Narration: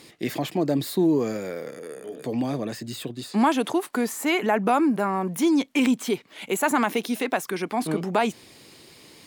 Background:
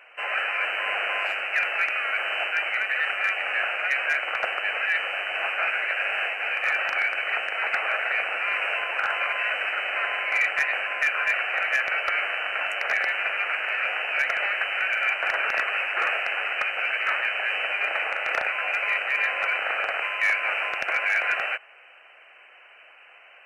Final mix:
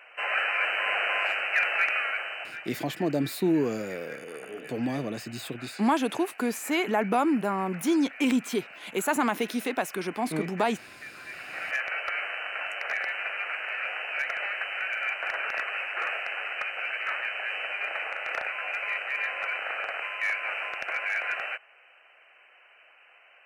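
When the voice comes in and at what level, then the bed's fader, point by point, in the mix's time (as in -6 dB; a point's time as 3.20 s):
2.45 s, -3.5 dB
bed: 1.98 s -0.5 dB
2.81 s -20 dB
11.22 s -20 dB
11.75 s -6 dB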